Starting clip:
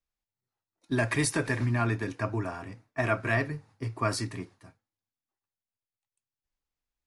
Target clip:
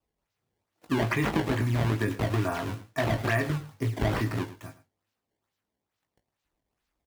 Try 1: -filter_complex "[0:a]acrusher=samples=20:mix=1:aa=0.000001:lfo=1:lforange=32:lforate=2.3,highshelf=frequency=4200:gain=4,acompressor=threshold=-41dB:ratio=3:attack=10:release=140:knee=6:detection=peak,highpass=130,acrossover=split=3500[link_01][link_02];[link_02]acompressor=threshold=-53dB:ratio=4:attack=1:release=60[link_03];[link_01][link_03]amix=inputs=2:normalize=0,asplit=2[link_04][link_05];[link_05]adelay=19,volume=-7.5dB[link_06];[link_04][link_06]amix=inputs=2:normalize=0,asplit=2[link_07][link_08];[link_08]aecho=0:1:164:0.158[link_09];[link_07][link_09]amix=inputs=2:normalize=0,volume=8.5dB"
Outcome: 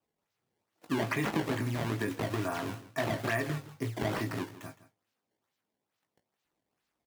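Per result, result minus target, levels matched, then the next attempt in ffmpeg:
echo 55 ms late; downward compressor: peak gain reduction +4 dB; 125 Hz band −3.0 dB
-filter_complex "[0:a]acrusher=samples=20:mix=1:aa=0.000001:lfo=1:lforange=32:lforate=2.3,highshelf=frequency=4200:gain=4,acompressor=threshold=-41dB:ratio=3:attack=10:release=140:knee=6:detection=peak,highpass=130,acrossover=split=3500[link_01][link_02];[link_02]acompressor=threshold=-53dB:ratio=4:attack=1:release=60[link_03];[link_01][link_03]amix=inputs=2:normalize=0,asplit=2[link_04][link_05];[link_05]adelay=19,volume=-7.5dB[link_06];[link_04][link_06]amix=inputs=2:normalize=0,asplit=2[link_07][link_08];[link_08]aecho=0:1:109:0.158[link_09];[link_07][link_09]amix=inputs=2:normalize=0,volume=8.5dB"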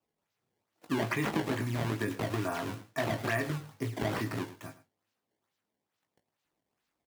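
downward compressor: peak gain reduction +4 dB; 125 Hz band −3.0 dB
-filter_complex "[0:a]acrusher=samples=20:mix=1:aa=0.000001:lfo=1:lforange=32:lforate=2.3,highshelf=frequency=4200:gain=4,acompressor=threshold=-35dB:ratio=3:attack=10:release=140:knee=6:detection=peak,highpass=130,acrossover=split=3500[link_01][link_02];[link_02]acompressor=threshold=-53dB:ratio=4:attack=1:release=60[link_03];[link_01][link_03]amix=inputs=2:normalize=0,asplit=2[link_04][link_05];[link_05]adelay=19,volume=-7.5dB[link_06];[link_04][link_06]amix=inputs=2:normalize=0,asplit=2[link_07][link_08];[link_08]aecho=0:1:109:0.158[link_09];[link_07][link_09]amix=inputs=2:normalize=0,volume=8.5dB"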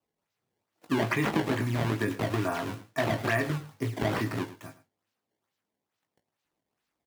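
125 Hz band −2.5 dB
-filter_complex "[0:a]acrusher=samples=20:mix=1:aa=0.000001:lfo=1:lforange=32:lforate=2.3,highshelf=frequency=4200:gain=4,acompressor=threshold=-35dB:ratio=3:attack=10:release=140:knee=6:detection=peak,highpass=33,acrossover=split=3500[link_01][link_02];[link_02]acompressor=threshold=-53dB:ratio=4:attack=1:release=60[link_03];[link_01][link_03]amix=inputs=2:normalize=0,asplit=2[link_04][link_05];[link_05]adelay=19,volume=-7.5dB[link_06];[link_04][link_06]amix=inputs=2:normalize=0,asplit=2[link_07][link_08];[link_08]aecho=0:1:109:0.158[link_09];[link_07][link_09]amix=inputs=2:normalize=0,volume=8.5dB"

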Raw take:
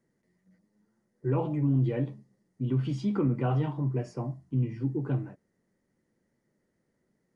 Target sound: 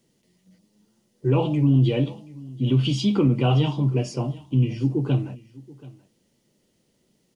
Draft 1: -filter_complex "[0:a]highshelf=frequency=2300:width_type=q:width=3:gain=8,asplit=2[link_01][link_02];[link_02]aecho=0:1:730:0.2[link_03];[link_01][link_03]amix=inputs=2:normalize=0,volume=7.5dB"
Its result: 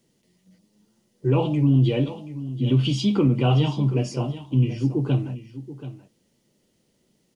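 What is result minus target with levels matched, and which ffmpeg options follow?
echo-to-direct +7 dB
-filter_complex "[0:a]highshelf=frequency=2300:width_type=q:width=3:gain=8,asplit=2[link_01][link_02];[link_02]aecho=0:1:730:0.0891[link_03];[link_01][link_03]amix=inputs=2:normalize=0,volume=7.5dB"

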